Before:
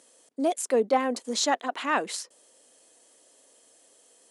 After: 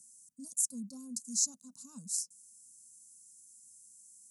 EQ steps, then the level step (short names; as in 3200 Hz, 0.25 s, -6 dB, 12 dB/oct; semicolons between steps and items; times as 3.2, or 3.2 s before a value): inverse Chebyshev band-stop 390–3400 Hz, stop band 40 dB; bell 500 Hz +3 dB 0.26 oct; fixed phaser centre 840 Hz, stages 4; +4.0 dB